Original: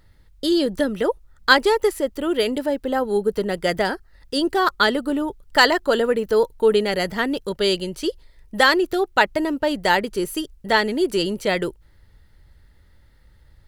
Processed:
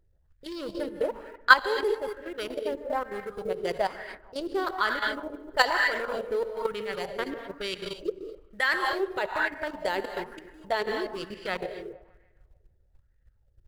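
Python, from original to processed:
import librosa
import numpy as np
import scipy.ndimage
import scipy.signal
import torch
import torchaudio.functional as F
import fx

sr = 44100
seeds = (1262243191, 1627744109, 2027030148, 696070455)

p1 = fx.wiener(x, sr, points=41)
p2 = fx.rev_gated(p1, sr, seeds[0], gate_ms=270, shape='rising', drr_db=5.0)
p3 = fx.level_steps(p2, sr, step_db=12)
p4 = fx.peak_eq(p3, sr, hz=260.0, db=-10.5, octaves=1.4)
p5 = fx.quant_float(p4, sr, bits=4)
p6 = p5 + fx.echo_wet_lowpass(p5, sr, ms=150, feedback_pct=49, hz=1600.0, wet_db=-14.5, dry=0)
p7 = fx.bell_lfo(p6, sr, hz=1.1, low_hz=370.0, high_hz=2000.0, db=11)
y = F.gain(torch.from_numpy(p7), -5.0).numpy()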